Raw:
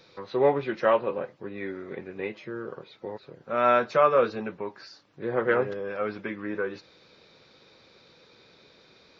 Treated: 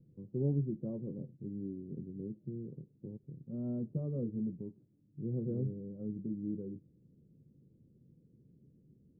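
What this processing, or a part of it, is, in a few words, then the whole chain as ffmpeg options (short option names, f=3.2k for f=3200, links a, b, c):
the neighbour's flat through the wall: -af "lowpass=f=260:w=0.5412,lowpass=f=260:w=1.3066,equalizer=f=140:t=o:w=0.43:g=6.5,volume=1dB"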